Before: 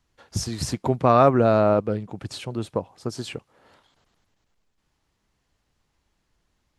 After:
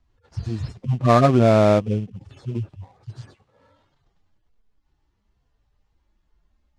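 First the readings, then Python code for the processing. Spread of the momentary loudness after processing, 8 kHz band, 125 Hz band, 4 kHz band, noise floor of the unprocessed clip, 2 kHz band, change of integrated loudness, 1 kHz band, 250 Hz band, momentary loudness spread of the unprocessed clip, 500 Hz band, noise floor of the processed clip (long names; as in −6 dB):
21 LU, can't be measured, +5.5 dB, −2.0 dB, −74 dBFS, +2.5 dB, +2.5 dB, −0.5 dB, +3.0 dB, 18 LU, +0.5 dB, −71 dBFS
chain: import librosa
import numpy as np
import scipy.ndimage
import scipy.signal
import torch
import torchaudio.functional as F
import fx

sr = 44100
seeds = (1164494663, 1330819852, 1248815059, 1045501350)

p1 = fx.hpss_only(x, sr, part='harmonic')
p2 = fx.low_shelf(p1, sr, hz=110.0, db=6.5)
p3 = fx.sample_hold(p2, sr, seeds[0], rate_hz=2900.0, jitter_pct=20)
p4 = p2 + F.gain(torch.from_numpy(p3), -6.0).numpy()
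y = fx.air_absorb(p4, sr, metres=79.0)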